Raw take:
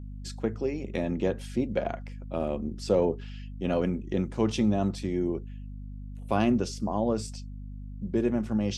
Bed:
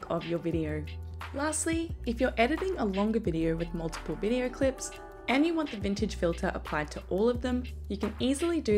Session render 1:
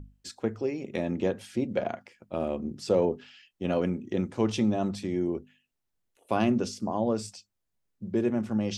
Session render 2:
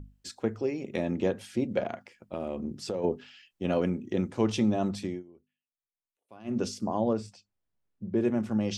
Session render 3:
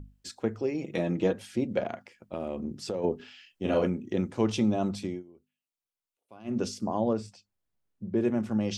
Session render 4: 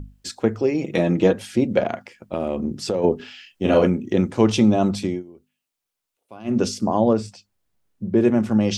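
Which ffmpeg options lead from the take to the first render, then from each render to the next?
ffmpeg -i in.wav -af "bandreject=frequency=50:width_type=h:width=6,bandreject=frequency=100:width_type=h:width=6,bandreject=frequency=150:width_type=h:width=6,bandreject=frequency=200:width_type=h:width=6,bandreject=frequency=250:width_type=h:width=6" out.wav
ffmpeg -i in.wav -filter_complex "[0:a]asplit=3[link_01][link_02][link_03];[link_01]afade=type=out:start_time=1.85:duration=0.02[link_04];[link_02]acompressor=threshold=-28dB:ratio=6:attack=3.2:release=140:knee=1:detection=peak,afade=type=in:start_time=1.85:duration=0.02,afade=type=out:start_time=3.03:duration=0.02[link_05];[link_03]afade=type=in:start_time=3.03:duration=0.02[link_06];[link_04][link_05][link_06]amix=inputs=3:normalize=0,asettb=1/sr,asplit=3[link_07][link_08][link_09];[link_07]atrim=end=7.134[link_10];[link_08]atrim=start=7.13:end=8.21,asetpts=PTS-STARTPTS,afade=type=in:duration=0.004:curve=qsin,afade=type=out:start_time=1.076:duration=0.004:curve=qsin,lowpass=frequency=1900:poles=1[link_11];[link_09]atrim=start=8.206[link_12];[link_10][link_11]acrossfade=duration=0.004:curve1=hsin:curve2=qsin[link_13];[link_13][link_12]acrossfade=duration=0.004:curve1=qsin:curve2=hsin,asplit=3[link_14][link_15][link_16];[link_14]atrim=end=5.23,asetpts=PTS-STARTPTS,afade=type=out:start_time=5.05:duration=0.18:silence=0.0630957[link_17];[link_15]atrim=start=5.23:end=6.44,asetpts=PTS-STARTPTS,volume=-24dB[link_18];[link_16]atrim=start=6.44,asetpts=PTS-STARTPTS,afade=type=in:duration=0.18:silence=0.0630957[link_19];[link_17][link_18][link_19]concat=n=3:v=0:a=1" out.wav
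ffmpeg -i in.wav -filter_complex "[0:a]asettb=1/sr,asplit=3[link_01][link_02][link_03];[link_01]atrim=end=0.744[link_04];[link_02]atrim=start=0.74:end=1.33,asetpts=PTS-STARTPTS,afade=type=in:duration=0.004:curve=qsin,afade=type=out:start_time=0.586:duration=0.004:curve=qsin,aecho=1:1:6.3:0.61,atrim=end_sample=26019[link_05];[link_03]atrim=start=1.326[link_06];[link_04][link_05]acrossfade=duration=0.004:curve1=hsin:curve2=qsin[link_07];[link_07][link_06]acrossfade=duration=0.004:curve1=qsin:curve2=hsin,asettb=1/sr,asplit=3[link_08][link_09][link_10];[link_08]atrim=end=3.164[link_11];[link_09]atrim=start=3.16:end=3.87,asetpts=PTS-STARTPTS,afade=type=in:duration=0.004:curve=qsin,afade=type=out:start_time=0.706:duration=0.004:curve=qsin,asplit=2[link_12][link_13];[link_13]adelay=37,volume=-2.5dB[link_14];[link_12][link_14]amix=inputs=2:normalize=0,atrim=end_sample=31311[link_15];[link_10]atrim=start=3.866[link_16];[link_11][link_15]acrossfade=duration=0.004:curve1=hsin:curve2=qsin[link_17];[link_17][link_16]acrossfade=duration=0.004:curve1=qsin:curve2=hsin,asettb=1/sr,asplit=3[link_18][link_19][link_20];[link_18]atrim=end=4.544[link_21];[link_19]atrim=start=4.54:end=6.46,asetpts=PTS-STARTPTS,afade=type=in:duration=0.004:curve=qsin,afade=type=out:start_time=1.916:duration=0.004:curve=qsin,bandreject=frequency=1800:width=8.5[link_22];[link_20]atrim=start=6.456[link_23];[link_21][link_22]acrossfade=duration=0.004:curve1=hsin:curve2=qsin[link_24];[link_24][link_23]acrossfade=duration=0.004:curve1=qsin:curve2=hsin" out.wav
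ffmpeg -i in.wav -af "volume=9.5dB" out.wav

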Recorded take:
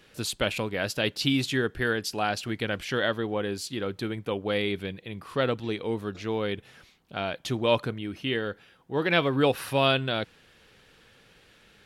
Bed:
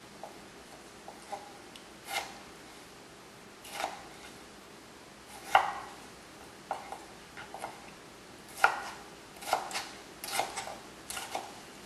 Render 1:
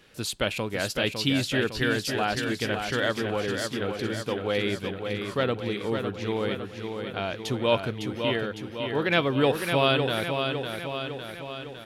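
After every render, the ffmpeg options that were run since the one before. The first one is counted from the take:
ffmpeg -i in.wav -af "aecho=1:1:556|1112|1668|2224|2780|3336|3892|4448:0.501|0.296|0.174|0.103|0.0607|0.0358|0.0211|0.0125" out.wav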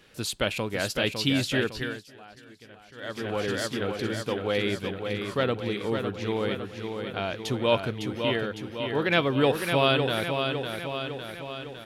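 ffmpeg -i in.wav -filter_complex "[0:a]asplit=3[link_01][link_02][link_03];[link_01]atrim=end=2.05,asetpts=PTS-STARTPTS,afade=type=out:start_time=1.58:duration=0.47:silence=0.0841395[link_04];[link_02]atrim=start=2.05:end=2.95,asetpts=PTS-STARTPTS,volume=-21.5dB[link_05];[link_03]atrim=start=2.95,asetpts=PTS-STARTPTS,afade=type=in:duration=0.47:silence=0.0841395[link_06];[link_04][link_05][link_06]concat=n=3:v=0:a=1" out.wav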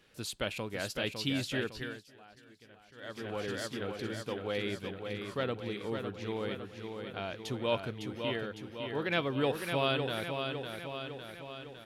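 ffmpeg -i in.wav -af "volume=-8dB" out.wav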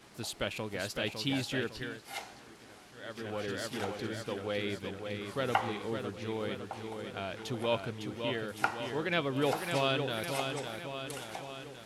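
ffmpeg -i in.wav -i bed.wav -filter_complex "[1:a]volume=-6dB[link_01];[0:a][link_01]amix=inputs=2:normalize=0" out.wav

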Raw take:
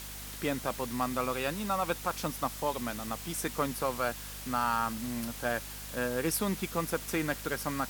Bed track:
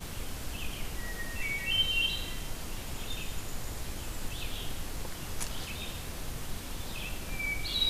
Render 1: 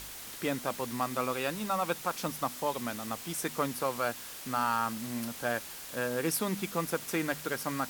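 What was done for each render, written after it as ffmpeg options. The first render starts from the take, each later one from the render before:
ffmpeg -i in.wav -af "bandreject=frequency=50:width_type=h:width=4,bandreject=frequency=100:width_type=h:width=4,bandreject=frequency=150:width_type=h:width=4,bandreject=frequency=200:width_type=h:width=4,bandreject=frequency=250:width_type=h:width=4" out.wav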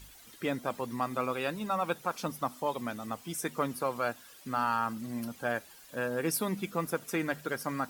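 ffmpeg -i in.wav -af "afftdn=noise_reduction=13:noise_floor=-44" out.wav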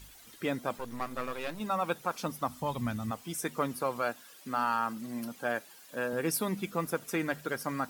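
ffmpeg -i in.wav -filter_complex "[0:a]asettb=1/sr,asplit=3[link_01][link_02][link_03];[link_01]atrim=end=0.784[link_04];[link_02]atrim=start=0.78:end=1.6,asetpts=PTS-STARTPTS,afade=type=in:duration=0.004:curve=qsin,afade=type=out:start_time=0.816:duration=0.004:curve=qsin,aeval=exprs='if(lt(val(0),0),0.251*val(0),val(0))':channel_layout=same[link_05];[link_03]atrim=start=1.596[link_06];[link_04][link_05]acrossfade=duration=0.004:curve1=hsin:curve2=qsin[link_07];[link_07][link_06]acrossfade=duration=0.004:curve1=qsin:curve2=hsin,asplit=3[link_08][link_09][link_10];[link_08]afade=type=out:start_time=2.48:duration=0.02[link_11];[link_09]asubboost=boost=10.5:cutoff=140,afade=type=in:start_time=2.48:duration=0.02,afade=type=out:start_time=3.1:duration=0.02[link_12];[link_10]afade=type=in:start_time=3.1:duration=0.02[link_13];[link_11][link_12][link_13]amix=inputs=3:normalize=0,asettb=1/sr,asplit=3[link_14][link_15][link_16];[link_14]atrim=end=4.024[link_17];[link_15]atrim=start=4.02:end=6.13,asetpts=PTS-STARTPTS,afade=type=in:duration=0.004:curve=qsin,afade=type=out:start_time=2.106:duration=0.004:curve=qsin,highpass=160[link_18];[link_16]atrim=start=6.126[link_19];[link_17][link_18]acrossfade=duration=0.004:curve1=hsin:curve2=qsin[link_20];[link_20][link_19]acrossfade=duration=0.004:curve1=qsin:curve2=hsin" out.wav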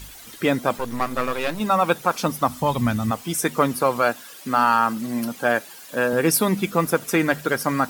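ffmpeg -i in.wav -af "volume=12dB" out.wav

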